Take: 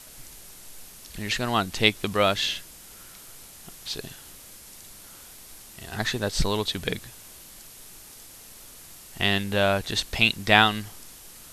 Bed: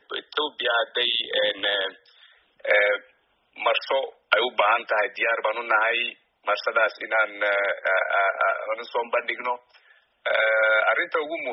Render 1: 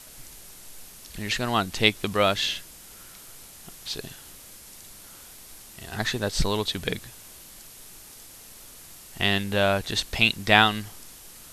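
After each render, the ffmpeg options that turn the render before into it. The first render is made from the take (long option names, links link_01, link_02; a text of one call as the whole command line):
ffmpeg -i in.wav -af anull out.wav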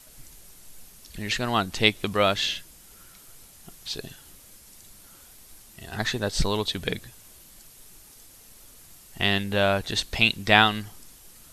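ffmpeg -i in.wav -af "afftdn=noise_reduction=6:noise_floor=-47" out.wav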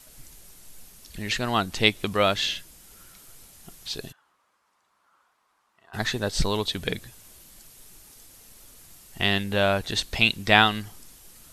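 ffmpeg -i in.wav -filter_complex "[0:a]asplit=3[link_01][link_02][link_03];[link_01]afade=type=out:start_time=4.11:duration=0.02[link_04];[link_02]bandpass=frequency=1100:width_type=q:width=3.3,afade=type=in:start_time=4.11:duration=0.02,afade=type=out:start_time=5.93:duration=0.02[link_05];[link_03]afade=type=in:start_time=5.93:duration=0.02[link_06];[link_04][link_05][link_06]amix=inputs=3:normalize=0" out.wav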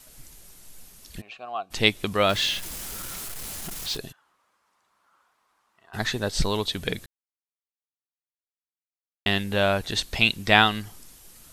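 ffmpeg -i in.wav -filter_complex "[0:a]asplit=3[link_01][link_02][link_03];[link_01]afade=type=out:start_time=1.2:duration=0.02[link_04];[link_02]asplit=3[link_05][link_06][link_07];[link_05]bandpass=frequency=730:width_type=q:width=8,volume=0dB[link_08];[link_06]bandpass=frequency=1090:width_type=q:width=8,volume=-6dB[link_09];[link_07]bandpass=frequency=2440:width_type=q:width=8,volume=-9dB[link_10];[link_08][link_09][link_10]amix=inputs=3:normalize=0,afade=type=in:start_time=1.2:duration=0.02,afade=type=out:start_time=1.7:duration=0.02[link_11];[link_03]afade=type=in:start_time=1.7:duration=0.02[link_12];[link_04][link_11][link_12]amix=inputs=3:normalize=0,asettb=1/sr,asplit=3[link_13][link_14][link_15];[link_13]atrim=end=2.294[link_16];[link_14]atrim=start=2.29:end=3.97,asetpts=PTS-STARTPTS,afade=type=in:duration=0.004:curve=qsin,afade=type=out:start_time=1.676:duration=0.004:curve=qsin,aeval=exprs='val(0)+0.5*0.0282*sgn(val(0))':channel_layout=same[link_17];[link_15]atrim=start=3.966[link_18];[link_16][link_17]acrossfade=duration=0.004:curve1=hsin:curve2=qsin[link_19];[link_19][link_18]acrossfade=duration=0.004:curve1=qsin:curve2=hsin,asplit=3[link_20][link_21][link_22];[link_20]atrim=end=7.06,asetpts=PTS-STARTPTS,afade=type=out:start_time=7.056:duration=0.004:curve=hsin[link_23];[link_21]atrim=start=7.06:end=9.26,asetpts=PTS-STARTPTS,volume=0[link_24];[link_22]atrim=start=9.26,asetpts=PTS-STARTPTS,afade=type=in:duration=0.004:curve=hsin[link_25];[link_23][link_24][link_25]concat=n=3:v=0:a=1" out.wav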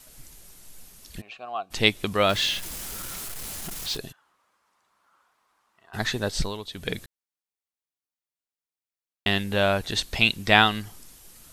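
ffmpeg -i in.wav -filter_complex "[0:a]asplit=3[link_01][link_02][link_03];[link_01]atrim=end=6.57,asetpts=PTS-STARTPTS,afade=type=out:start_time=6.31:duration=0.26:silence=0.316228[link_04];[link_02]atrim=start=6.57:end=6.7,asetpts=PTS-STARTPTS,volume=-10dB[link_05];[link_03]atrim=start=6.7,asetpts=PTS-STARTPTS,afade=type=in:duration=0.26:silence=0.316228[link_06];[link_04][link_05][link_06]concat=n=3:v=0:a=1" out.wav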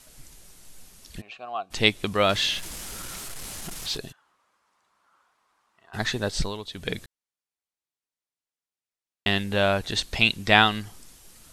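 ffmpeg -i in.wav -af "lowpass=11000" out.wav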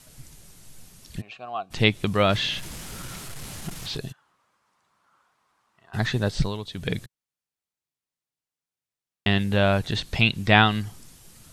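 ffmpeg -i in.wav -filter_complex "[0:a]acrossover=split=4200[link_01][link_02];[link_02]acompressor=threshold=-40dB:ratio=4:attack=1:release=60[link_03];[link_01][link_03]amix=inputs=2:normalize=0,equalizer=frequency=130:width_type=o:width=1.3:gain=9.5" out.wav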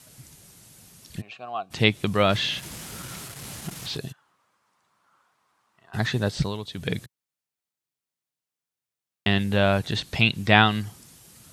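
ffmpeg -i in.wav -af "highpass=75,highshelf=frequency=11000:gain=3" out.wav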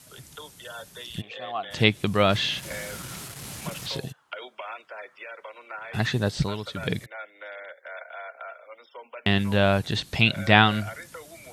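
ffmpeg -i in.wav -i bed.wav -filter_complex "[1:a]volume=-17.5dB[link_01];[0:a][link_01]amix=inputs=2:normalize=0" out.wav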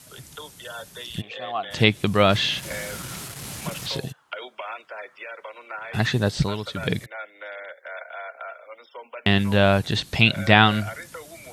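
ffmpeg -i in.wav -af "volume=3dB,alimiter=limit=-1dB:level=0:latency=1" out.wav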